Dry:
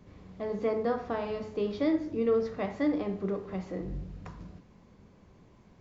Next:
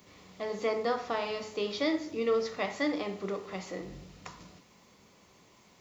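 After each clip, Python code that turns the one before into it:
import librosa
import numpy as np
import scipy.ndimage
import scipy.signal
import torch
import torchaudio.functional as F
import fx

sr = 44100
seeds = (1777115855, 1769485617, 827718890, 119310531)

y = fx.tilt_eq(x, sr, slope=4.0)
y = fx.notch(y, sr, hz=1600.0, q=9.2)
y = y * 10.0 ** (3.0 / 20.0)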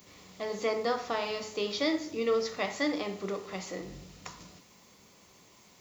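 y = fx.high_shelf(x, sr, hz=5500.0, db=9.5)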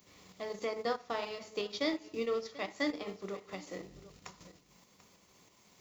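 y = fx.transient(x, sr, attack_db=2, sustain_db=-10)
y = y + 10.0 ** (-18.0 / 20.0) * np.pad(y, (int(739 * sr / 1000.0), 0))[:len(y)]
y = fx.tremolo_shape(y, sr, shape='saw_up', hz=3.1, depth_pct=40)
y = y * 10.0 ** (-3.5 / 20.0)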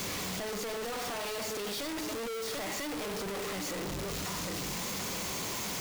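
y = np.sign(x) * np.sqrt(np.mean(np.square(x)))
y = y * 10.0 ** (3.5 / 20.0)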